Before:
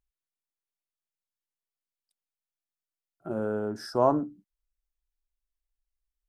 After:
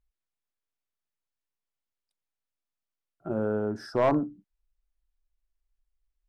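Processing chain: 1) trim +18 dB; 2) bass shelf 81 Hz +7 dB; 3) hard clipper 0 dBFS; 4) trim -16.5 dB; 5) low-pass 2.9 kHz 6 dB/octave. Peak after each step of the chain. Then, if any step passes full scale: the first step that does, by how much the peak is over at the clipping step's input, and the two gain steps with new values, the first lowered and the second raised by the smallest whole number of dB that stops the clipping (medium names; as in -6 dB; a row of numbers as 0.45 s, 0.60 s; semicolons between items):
+8.5 dBFS, +9.0 dBFS, 0.0 dBFS, -16.5 dBFS, -16.5 dBFS; step 1, 9.0 dB; step 1 +9 dB, step 4 -7.5 dB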